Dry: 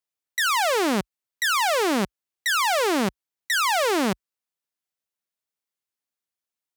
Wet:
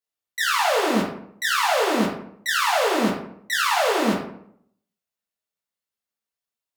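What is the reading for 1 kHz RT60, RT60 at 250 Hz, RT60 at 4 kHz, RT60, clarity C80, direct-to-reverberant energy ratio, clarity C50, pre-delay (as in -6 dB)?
0.65 s, 0.75 s, 0.40 s, 0.70 s, 8.0 dB, -6.0 dB, 4.0 dB, 3 ms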